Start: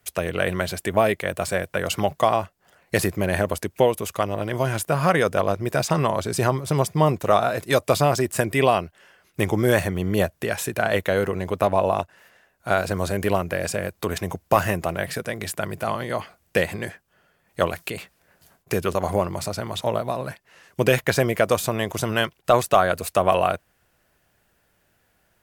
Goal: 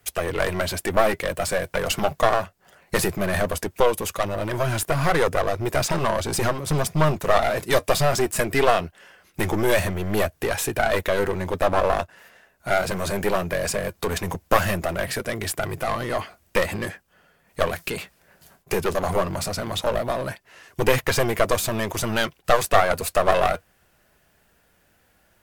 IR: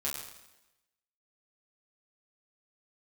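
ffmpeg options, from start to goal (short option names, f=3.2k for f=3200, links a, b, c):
-af "aeval=exprs='clip(val(0),-1,0.0473)':c=same,flanger=delay=2.4:depth=2.9:regen=-67:speed=0.19:shape=triangular,volume=8dB"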